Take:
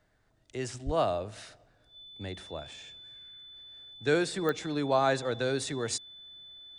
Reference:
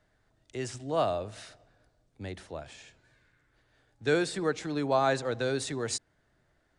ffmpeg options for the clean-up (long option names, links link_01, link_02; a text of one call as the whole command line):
ffmpeg -i in.wav -filter_complex "[0:a]adeclick=threshold=4,bandreject=frequency=3500:width=30,asplit=3[link_01][link_02][link_03];[link_01]afade=type=out:start_time=0.85:duration=0.02[link_04];[link_02]highpass=frequency=140:width=0.5412,highpass=frequency=140:width=1.3066,afade=type=in:start_time=0.85:duration=0.02,afade=type=out:start_time=0.97:duration=0.02[link_05];[link_03]afade=type=in:start_time=0.97:duration=0.02[link_06];[link_04][link_05][link_06]amix=inputs=3:normalize=0" out.wav